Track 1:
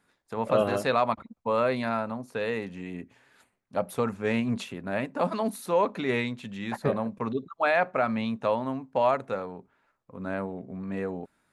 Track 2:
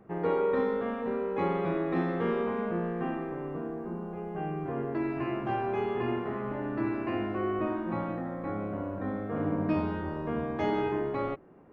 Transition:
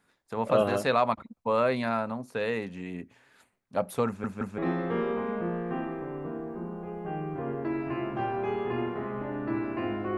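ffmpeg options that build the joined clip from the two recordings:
-filter_complex "[0:a]apad=whole_dur=10.17,atrim=end=10.17,asplit=3[s0][s1][s2];[s0]atrim=end=4.242[s3];[s1]atrim=start=4.068:end=4.242[s4];[s2]atrim=start=4.068:end=4.242[s5];[1:a]atrim=start=1.878:end=7.47[s6];[s3][s4]acrossfade=d=0.004:c1=hsin:c2=hsin[s7];[s7][s5]acrossfade=d=0.004:c1=hsin:c2=hsin[s8];[s8][s6]acrossfade=d=0.004:c1=hsin:c2=hsin"

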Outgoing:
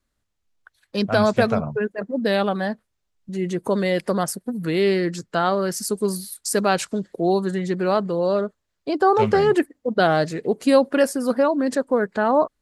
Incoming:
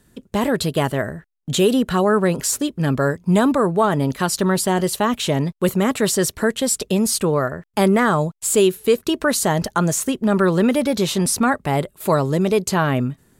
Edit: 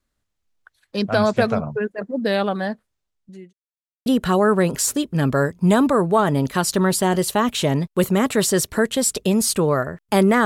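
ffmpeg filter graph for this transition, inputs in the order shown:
-filter_complex "[0:a]apad=whole_dur=10.45,atrim=end=10.45,asplit=2[s0][s1];[s0]atrim=end=3.53,asetpts=PTS-STARTPTS,afade=t=out:st=2.86:d=0.67[s2];[s1]atrim=start=3.53:end=4.06,asetpts=PTS-STARTPTS,volume=0[s3];[1:a]atrim=start=1.71:end=8.1,asetpts=PTS-STARTPTS,afade=t=in:d=0.004:c=hsin[s4];[s2][s3][s4]concat=n=3:v=0:a=1"

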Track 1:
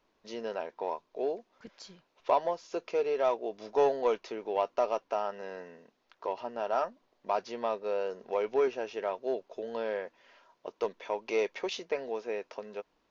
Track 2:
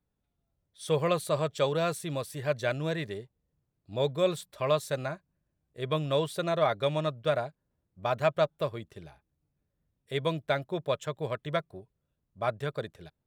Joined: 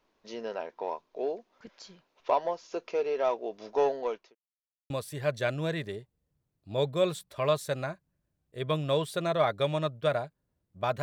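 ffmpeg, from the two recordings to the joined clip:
-filter_complex "[0:a]apad=whole_dur=11.02,atrim=end=11.02,asplit=2[s0][s1];[s0]atrim=end=4.35,asetpts=PTS-STARTPTS,afade=t=out:st=3.69:d=0.66:c=qsin[s2];[s1]atrim=start=4.35:end=4.9,asetpts=PTS-STARTPTS,volume=0[s3];[1:a]atrim=start=2.12:end=8.24,asetpts=PTS-STARTPTS,afade=t=in:d=0.004:c=hsin[s4];[s2][s3][s4]concat=n=3:v=0:a=1"

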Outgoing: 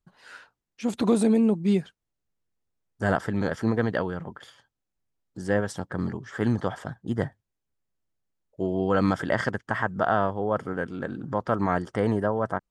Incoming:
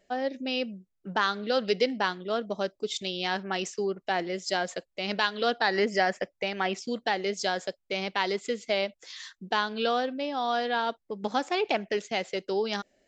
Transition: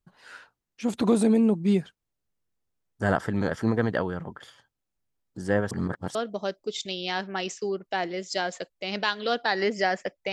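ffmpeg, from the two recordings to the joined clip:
-filter_complex "[0:a]apad=whole_dur=10.32,atrim=end=10.32,asplit=2[s0][s1];[s0]atrim=end=5.712[s2];[s1]atrim=start=5.708:end=6.152,asetpts=PTS-STARTPTS,areverse[s3];[1:a]atrim=start=2.308:end=6.48[s4];[s2][s3]acrossfade=d=0.004:c1=hsin:c2=hsin[s5];[s5][s4]acrossfade=d=0.004:c1=hsin:c2=hsin"

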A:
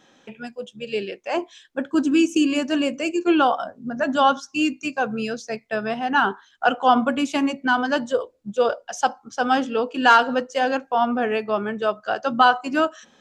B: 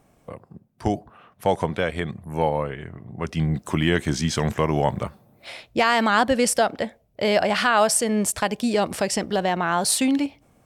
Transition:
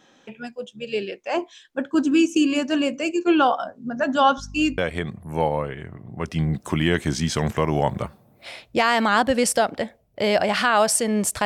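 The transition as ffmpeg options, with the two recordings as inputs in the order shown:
-filter_complex "[0:a]asettb=1/sr,asplit=3[s0][s1][s2];[s0]atrim=end=4.384[s3];[s1]atrim=start=4.38:end=4.78,asetpts=PTS-STARTPTS,afade=t=in:d=0.004:c=qsin,afade=t=out:st=0.396:d=0.004:c=qsin,aeval=exprs='val(0)+0.0141*(sin(2*PI*50*n/s)+sin(2*PI*2*50*n/s)/2+sin(2*PI*3*50*n/s)/3+sin(2*PI*4*50*n/s)/4+sin(2*PI*5*50*n/s)/5)':c=same[s4];[s2]atrim=start=4.776[s5];[s3][s4]acrossfade=d=0.004:c1=hsin:c2=qsin[s6];[s6][s5]acrossfade=d=0.004:c1=qsin:c2=hsin,apad=whole_dur=11.45,atrim=end=11.45,atrim=end=4.782[s7];[1:a]atrim=start=1.788:end=8.46[s8];[s7][s8]acrossfade=d=0.004:c1=hsin:c2=hsin"

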